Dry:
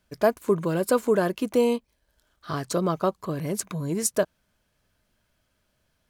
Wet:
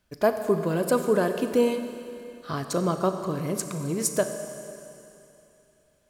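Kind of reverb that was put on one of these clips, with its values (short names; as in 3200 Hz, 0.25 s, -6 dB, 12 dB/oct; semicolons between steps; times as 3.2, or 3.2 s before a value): Schroeder reverb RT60 2.9 s, combs from 29 ms, DRR 7 dB; gain -1 dB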